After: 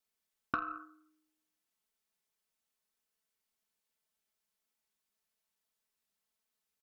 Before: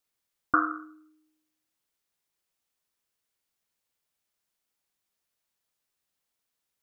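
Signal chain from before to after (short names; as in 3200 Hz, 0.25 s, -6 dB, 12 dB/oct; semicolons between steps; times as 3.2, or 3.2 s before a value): comb 4.6 ms, depth 68%; compressor 20:1, threshold -26 dBFS, peak gain reduction 9 dB; added harmonics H 3 -19 dB, 4 -28 dB, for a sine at -14.5 dBFS; gain -2 dB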